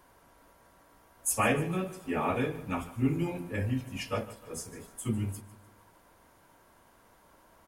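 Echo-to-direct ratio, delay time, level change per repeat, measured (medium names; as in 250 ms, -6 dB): -16.0 dB, 150 ms, -7.0 dB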